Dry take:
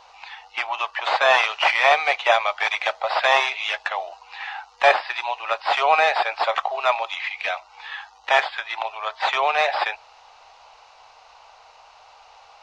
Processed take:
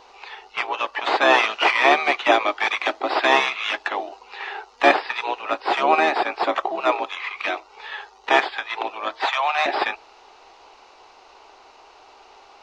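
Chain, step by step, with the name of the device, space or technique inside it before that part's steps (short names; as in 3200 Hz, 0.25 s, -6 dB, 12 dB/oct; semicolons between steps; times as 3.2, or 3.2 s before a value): octave pedal (harmoniser -12 st -8 dB); 5.41–7.36 bell 3500 Hz -3 dB 2.1 oct; 9.25–9.66 Chebyshev high-pass 750 Hz, order 3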